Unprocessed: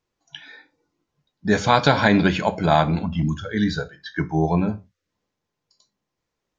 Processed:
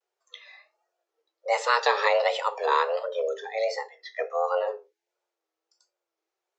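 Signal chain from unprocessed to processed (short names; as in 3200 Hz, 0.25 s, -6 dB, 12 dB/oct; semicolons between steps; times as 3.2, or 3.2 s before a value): frequency shift +340 Hz; vibrato 1.4 Hz 96 cents; gain -6 dB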